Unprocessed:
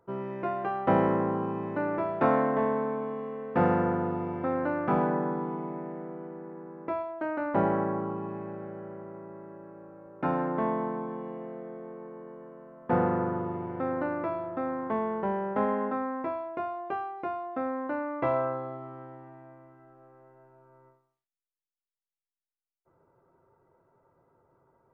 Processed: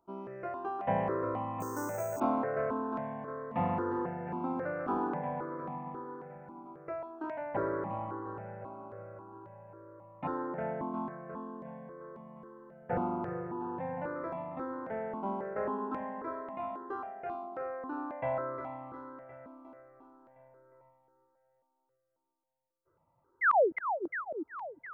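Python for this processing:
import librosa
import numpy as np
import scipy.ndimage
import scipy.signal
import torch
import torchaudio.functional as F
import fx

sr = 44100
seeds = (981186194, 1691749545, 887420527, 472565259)

p1 = fx.spec_paint(x, sr, seeds[0], shape='fall', start_s=23.41, length_s=0.31, low_hz=280.0, high_hz=2200.0, level_db=-18.0)
p2 = p1 + fx.echo_feedback(p1, sr, ms=356, feedback_pct=59, wet_db=-8, dry=0)
p3 = fx.resample_bad(p2, sr, factor=6, down='none', up='hold', at=(1.6, 2.2))
p4 = fx.phaser_held(p3, sr, hz=3.7, low_hz=480.0, high_hz=1500.0)
y = p4 * 10.0 ** (-4.0 / 20.0)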